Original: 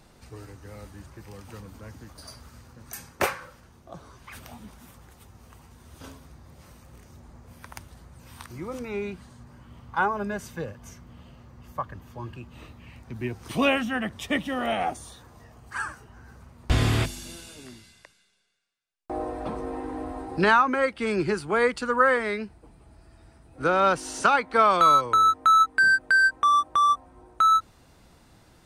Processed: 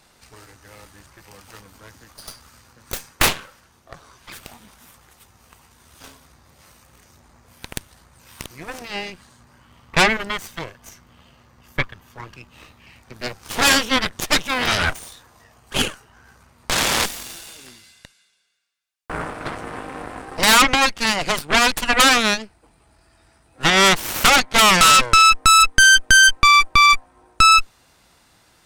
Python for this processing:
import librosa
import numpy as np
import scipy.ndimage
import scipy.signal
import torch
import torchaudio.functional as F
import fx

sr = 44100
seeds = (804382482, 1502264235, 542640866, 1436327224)

y = fx.fold_sine(x, sr, drive_db=8, ceiling_db=-7.0)
y = fx.tilt_shelf(y, sr, db=-6.0, hz=670.0)
y = fx.cheby_harmonics(y, sr, harmonics=(6, 7), levels_db=(-6, -13), full_scale_db=1.5)
y = F.gain(torch.from_numpy(y), -7.5).numpy()